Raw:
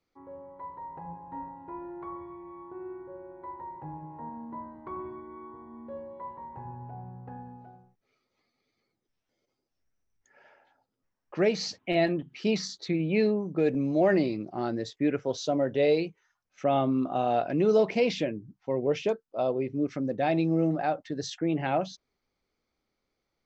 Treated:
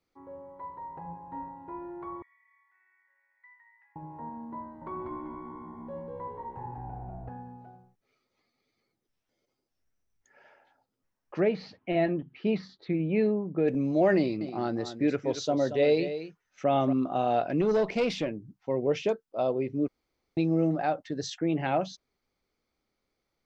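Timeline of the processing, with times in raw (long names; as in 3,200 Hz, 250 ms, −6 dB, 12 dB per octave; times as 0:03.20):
0:02.22–0:03.96: four-pole ladder high-pass 1,900 Hz, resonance 90%
0:04.62–0:07.29: echo with shifted repeats 194 ms, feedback 41%, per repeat −66 Hz, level −3 dB
0:11.40–0:13.68: high-frequency loss of the air 400 metres
0:14.18–0:16.93: single-tap delay 229 ms −11 dB
0:17.61–0:18.44: tube saturation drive 19 dB, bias 0.35
0:19.88–0:20.37: fill with room tone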